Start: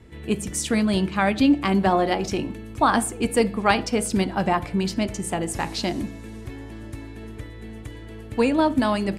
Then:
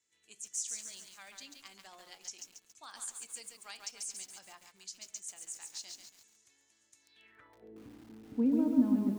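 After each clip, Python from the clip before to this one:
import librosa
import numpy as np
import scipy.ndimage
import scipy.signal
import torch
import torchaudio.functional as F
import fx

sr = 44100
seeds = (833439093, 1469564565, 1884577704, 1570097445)

y = fx.filter_sweep_bandpass(x, sr, from_hz=6700.0, to_hz=250.0, start_s=7.01, end_s=7.84, q=4.3)
y = fx.echo_crushed(y, sr, ms=139, feedback_pct=55, bits=9, wet_db=-3.5)
y = y * librosa.db_to_amplitude(-3.5)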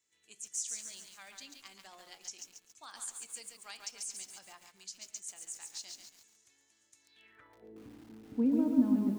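y = x + 10.0 ** (-17.5 / 20.0) * np.pad(x, (int(116 * sr / 1000.0), 0))[:len(x)]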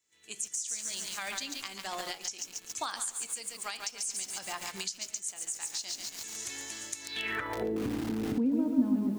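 y = fx.recorder_agc(x, sr, target_db=-25.0, rise_db_per_s=45.0, max_gain_db=30)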